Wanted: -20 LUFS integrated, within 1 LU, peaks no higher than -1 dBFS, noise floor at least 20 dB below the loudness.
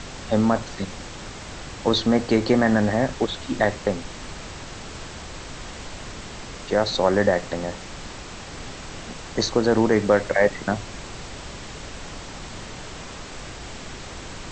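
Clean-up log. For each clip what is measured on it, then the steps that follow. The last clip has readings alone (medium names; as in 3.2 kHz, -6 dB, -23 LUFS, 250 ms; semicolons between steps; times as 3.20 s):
noise floor -38 dBFS; noise floor target -43 dBFS; loudness -22.5 LUFS; peak level -5.0 dBFS; loudness target -20.0 LUFS
-> noise print and reduce 6 dB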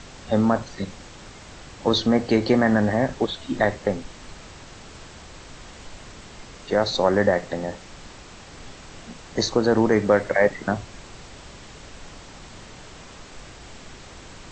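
noise floor -44 dBFS; loudness -22.5 LUFS; peak level -5.0 dBFS; loudness target -20.0 LUFS
-> trim +2.5 dB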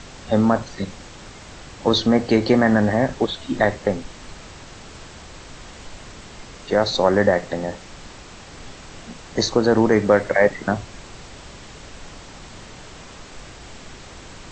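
loudness -20.0 LUFS; peak level -2.5 dBFS; noise floor -41 dBFS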